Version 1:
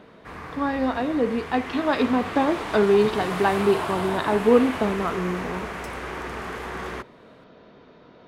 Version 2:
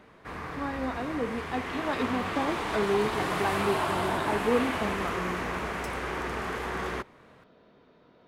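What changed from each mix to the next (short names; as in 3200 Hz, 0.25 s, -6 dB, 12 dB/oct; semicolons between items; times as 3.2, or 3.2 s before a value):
speech -9.0 dB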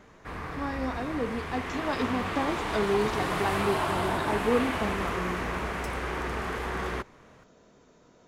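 speech: remove steep low-pass 4300 Hz; master: add low shelf 61 Hz +10 dB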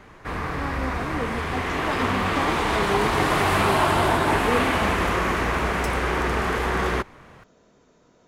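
background +8.5 dB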